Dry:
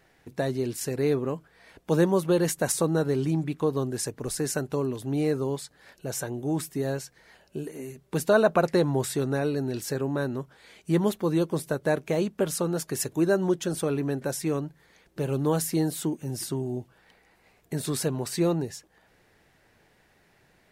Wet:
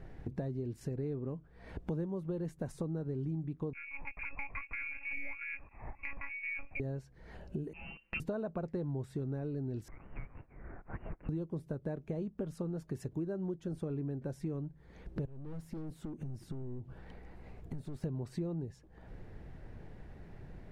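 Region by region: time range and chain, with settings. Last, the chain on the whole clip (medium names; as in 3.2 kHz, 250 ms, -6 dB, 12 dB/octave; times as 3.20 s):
3.73–6.80 s: frequency inversion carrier 2.6 kHz + monotone LPC vocoder at 8 kHz 280 Hz
7.73–8.20 s: companding laws mixed up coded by A + comb 6.3 ms, depth 97% + frequency inversion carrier 2.9 kHz
9.88–11.29 s: CVSD coder 32 kbps + Bessel high-pass 2.7 kHz, order 6 + frequency inversion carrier 3.8 kHz
15.25–18.04 s: overload inside the chain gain 30 dB + compression 4:1, threshold -49 dBFS
whole clip: tilt EQ -4.5 dB/octave; compression 5:1, threshold -41 dBFS; trim +2.5 dB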